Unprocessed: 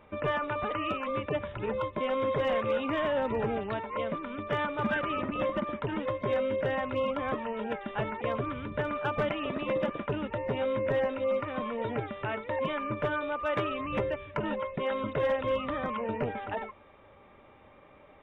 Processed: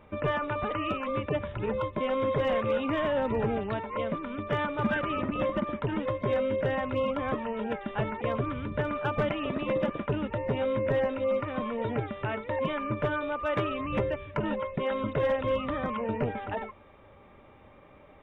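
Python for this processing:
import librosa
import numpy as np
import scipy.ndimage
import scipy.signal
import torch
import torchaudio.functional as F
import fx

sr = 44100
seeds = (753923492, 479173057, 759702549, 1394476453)

y = fx.low_shelf(x, sr, hz=270.0, db=5.5)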